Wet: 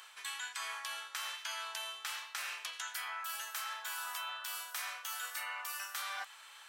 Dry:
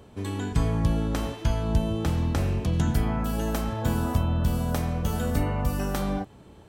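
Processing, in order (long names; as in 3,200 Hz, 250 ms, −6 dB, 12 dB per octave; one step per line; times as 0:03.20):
high-pass filter 1,300 Hz 24 dB per octave
reversed playback
downward compressor 10 to 1, threshold −48 dBFS, peak gain reduction 16.5 dB
reversed playback
level +10 dB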